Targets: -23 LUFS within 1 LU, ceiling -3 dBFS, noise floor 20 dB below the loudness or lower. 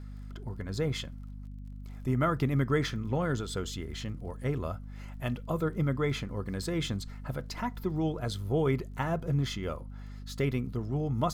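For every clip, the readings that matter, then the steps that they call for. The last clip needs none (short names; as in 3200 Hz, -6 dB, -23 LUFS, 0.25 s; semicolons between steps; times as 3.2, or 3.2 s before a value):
ticks 24/s; hum 50 Hz; harmonics up to 250 Hz; hum level -40 dBFS; loudness -32.5 LUFS; peak -15.5 dBFS; loudness target -23.0 LUFS
-> de-click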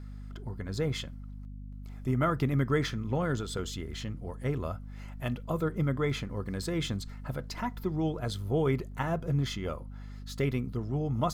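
ticks 0.26/s; hum 50 Hz; harmonics up to 250 Hz; hum level -40 dBFS
-> de-hum 50 Hz, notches 5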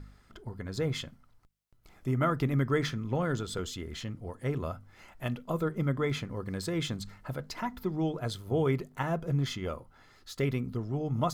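hum none; loudness -33.0 LUFS; peak -16.0 dBFS; loudness target -23.0 LUFS
-> gain +10 dB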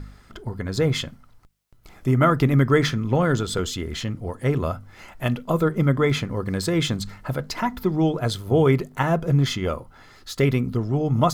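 loudness -23.0 LUFS; peak -6.0 dBFS; noise floor -51 dBFS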